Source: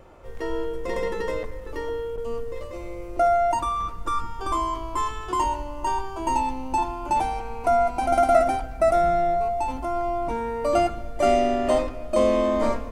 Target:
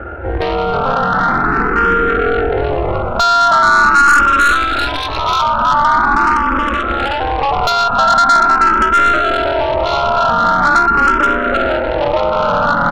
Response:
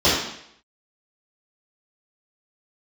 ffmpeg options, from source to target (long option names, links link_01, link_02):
-filter_complex "[0:a]equalizer=frequency=65:width=0.84:gain=11.5,asplit=2[link_01][link_02];[link_02]aeval=exprs='sgn(val(0))*max(abs(val(0))-0.0224,0)':channel_layout=same,volume=-9dB[link_03];[link_01][link_03]amix=inputs=2:normalize=0,aeval=exprs='0.708*(cos(1*acos(clip(val(0)/0.708,-1,1)))-cos(1*PI/2))+0.0355*(cos(3*acos(clip(val(0)/0.708,-1,1)))-cos(3*PI/2))+0.0251*(cos(7*acos(clip(val(0)/0.708,-1,1)))-cos(7*PI/2))':channel_layout=same,highpass=frequency=51:poles=1,asplit=6[link_04][link_05][link_06][link_07][link_08][link_09];[link_05]adelay=318,afreqshift=-42,volume=-4dB[link_10];[link_06]adelay=636,afreqshift=-84,volume=-11.3dB[link_11];[link_07]adelay=954,afreqshift=-126,volume=-18.7dB[link_12];[link_08]adelay=1272,afreqshift=-168,volume=-26dB[link_13];[link_09]adelay=1590,afreqshift=-210,volume=-33.3dB[link_14];[link_04][link_10][link_11][link_12][link_13][link_14]amix=inputs=6:normalize=0,tremolo=f=280:d=0.974,acompressor=threshold=-31dB:ratio=16,lowpass=frequency=1400:width_type=q:width=15,aeval=exprs='(tanh(28.2*val(0)+0.2)-tanh(0.2))/28.2':channel_layout=same,alimiter=level_in=32dB:limit=-1dB:release=50:level=0:latency=1,asplit=2[link_15][link_16];[link_16]afreqshift=0.43[link_17];[link_15][link_17]amix=inputs=2:normalize=1,volume=-3dB"